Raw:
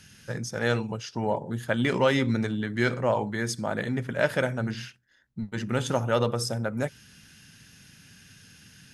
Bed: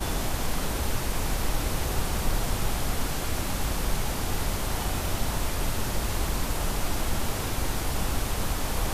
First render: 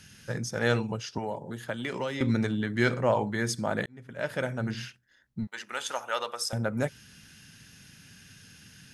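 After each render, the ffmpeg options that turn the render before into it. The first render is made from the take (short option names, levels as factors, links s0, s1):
-filter_complex "[0:a]asettb=1/sr,asplit=3[s0][s1][s2];[s0]atrim=end=1.184[s3];[s1]atrim=start=1.18:end=2.21,asetpts=PTS-STARTPTS,afade=t=in:d=0.004:c=qsin,afade=t=out:st=1.026:d=0.004:c=qsin,acrossover=split=340|4200[s4][s5][s6];[s4]acompressor=threshold=0.01:ratio=4[s7];[s5]acompressor=threshold=0.0224:ratio=4[s8];[s6]acompressor=threshold=0.00282:ratio=4[s9];[s7][s8][s9]amix=inputs=3:normalize=0[s10];[s2]atrim=start=2.206[s11];[s3][s10]acrossfade=d=0.004:c1=hsin:c2=qsin[s12];[s12][s11]acrossfade=d=0.004:c1=qsin:c2=hsin,asettb=1/sr,asplit=3[s13][s14][s15];[s13]atrim=end=5.474[s16];[s14]atrim=start=5.47:end=6.53,asetpts=PTS-STARTPTS,afade=t=in:d=0.004:c=qsin,afade=t=out:st=1.056:d=0.004:c=qsin,highpass=920[s17];[s15]atrim=start=6.526[s18];[s16][s17]acrossfade=d=0.004:c1=hsin:c2=qsin[s19];[s19][s18]acrossfade=d=0.004:c1=qsin:c2=hsin,asplit=2[s20][s21];[s20]atrim=end=3.86,asetpts=PTS-STARTPTS,afade=t=out:st=3.856:d=0.004:c=hsin[s22];[s21]atrim=start=3.86,asetpts=PTS-STARTPTS,afade=t=in:d=0.97[s23];[s22][s23]concat=n=2:v=0:a=1"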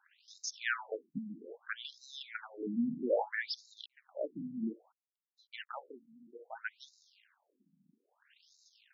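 -af "aeval=exprs='sgn(val(0))*max(abs(val(0))-0.00251,0)':c=same,afftfilt=real='re*between(b*sr/1024,200*pow(5300/200,0.5+0.5*sin(2*PI*0.61*pts/sr))/1.41,200*pow(5300/200,0.5+0.5*sin(2*PI*0.61*pts/sr))*1.41)':imag='im*between(b*sr/1024,200*pow(5300/200,0.5+0.5*sin(2*PI*0.61*pts/sr))/1.41,200*pow(5300/200,0.5+0.5*sin(2*PI*0.61*pts/sr))*1.41)':win_size=1024:overlap=0.75"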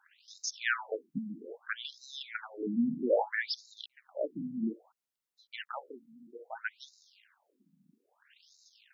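-af "volume=1.5"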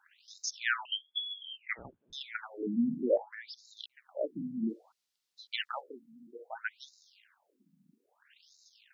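-filter_complex "[0:a]asettb=1/sr,asplit=3[s0][s1][s2];[s0]atrim=end=0.854[s3];[s1]atrim=start=0.85:end=2.13,asetpts=PTS-STARTPTS,afade=t=in:d=0.004:c=qsin,afade=t=out:st=1.276:d=0.004:c=qsin,lowpass=f=3100:t=q:w=0.5098,lowpass=f=3100:t=q:w=0.6013,lowpass=f=3100:t=q:w=0.9,lowpass=f=3100:t=q:w=2.563,afreqshift=-3600[s4];[s2]atrim=start=2.126[s5];[s3][s4]acrossfade=d=0.004:c1=hsin:c2=qsin[s6];[s6][s5]acrossfade=d=0.004:c1=qsin:c2=hsin,asettb=1/sr,asplit=3[s7][s8][s9];[s7]atrim=end=3.174[s10];[s8]atrim=start=3.17:end=3.79,asetpts=PTS-STARTPTS,afade=t=in:d=0.004:c=qsin,afade=t=out:st=0.616:d=0.004:c=qsin,acompressor=threshold=0.00251:ratio=2:attack=3.2:release=140:knee=1:detection=peak[s11];[s9]atrim=start=3.786[s12];[s10][s11]acrossfade=d=0.004:c1=hsin:c2=qsin[s13];[s13][s12]acrossfade=d=0.004:c1=qsin:c2=hsin,asettb=1/sr,asplit=3[s14][s15][s16];[s14]atrim=end=4.694[s17];[s15]atrim=start=4.69:end=5.81,asetpts=PTS-STARTPTS,afade=t=in:d=0.004:c=qsin,afade=t=out:st=1.116:d=0.004:c=qsin,equalizer=f=4400:t=o:w=1.8:g=12[s18];[s16]atrim=start=5.806[s19];[s17][s18]acrossfade=d=0.004:c1=hsin:c2=qsin[s20];[s20][s19]acrossfade=d=0.004:c1=qsin:c2=hsin"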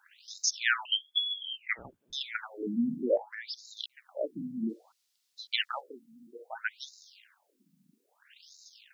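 -af "highshelf=f=2100:g=9"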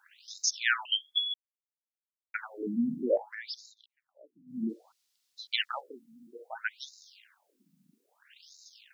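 -filter_complex "[0:a]asplit=5[s0][s1][s2][s3][s4];[s0]atrim=end=1.34,asetpts=PTS-STARTPTS,afade=t=out:st=1.336:d=0.004:c=hsin[s5];[s1]atrim=start=1.34:end=2.34,asetpts=PTS-STARTPTS,volume=0[s6];[s2]atrim=start=2.34:end=3.75,asetpts=PTS-STARTPTS,afade=t=in:d=0.004:c=hsin,afade=t=out:st=1.25:d=0.16:c=qsin:silence=0.0707946[s7];[s3]atrim=start=3.75:end=4.46,asetpts=PTS-STARTPTS,volume=0.0708[s8];[s4]atrim=start=4.46,asetpts=PTS-STARTPTS,afade=t=in:d=0.16:c=qsin:silence=0.0707946[s9];[s5][s6][s7][s8][s9]concat=n=5:v=0:a=1"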